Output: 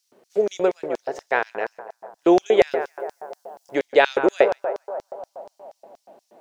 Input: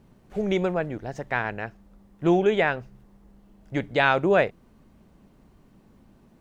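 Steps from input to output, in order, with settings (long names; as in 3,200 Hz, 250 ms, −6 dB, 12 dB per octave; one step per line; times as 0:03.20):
0:02.71–0:03.75: high-shelf EQ 5,800 Hz +10.5 dB
feedback echo with a band-pass in the loop 142 ms, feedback 79%, band-pass 760 Hz, level −10 dB
auto-filter high-pass square 4.2 Hz 440–5,400 Hz
level +3 dB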